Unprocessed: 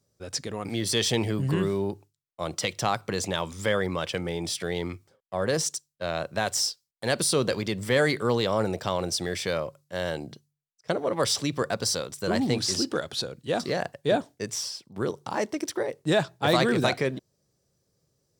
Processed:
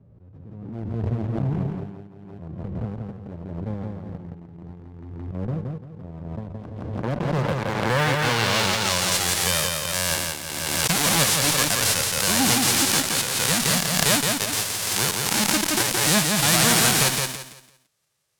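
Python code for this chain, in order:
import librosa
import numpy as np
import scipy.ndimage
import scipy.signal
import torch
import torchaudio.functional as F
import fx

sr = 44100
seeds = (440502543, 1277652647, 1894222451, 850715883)

p1 = fx.envelope_flatten(x, sr, power=0.1)
p2 = fx.filter_sweep_lowpass(p1, sr, from_hz=210.0, to_hz=11000.0, start_s=6.47, end_s=9.24, q=0.82)
p3 = fx.fuzz(p2, sr, gain_db=34.0, gate_db=-37.0)
p4 = p2 + (p3 * librosa.db_to_amplitude(-8.0))
p5 = fx.wow_flutter(p4, sr, seeds[0], rate_hz=2.1, depth_cents=16.0)
p6 = p5 + fx.echo_feedback(p5, sr, ms=170, feedback_pct=28, wet_db=-3.5, dry=0)
p7 = fx.pre_swell(p6, sr, db_per_s=29.0)
y = p7 * librosa.db_to_amplitude(-1.5)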